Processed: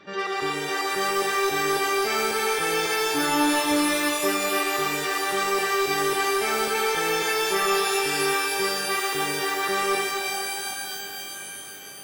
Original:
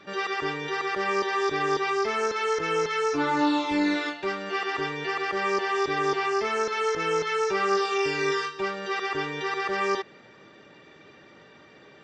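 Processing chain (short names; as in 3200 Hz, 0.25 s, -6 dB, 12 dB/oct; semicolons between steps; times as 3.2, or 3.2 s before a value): hard clip -20 dBFS, distortion -18 dB; shimmer reverb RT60 3.4 s, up +12 st, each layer -2 dB, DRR 2.5 dB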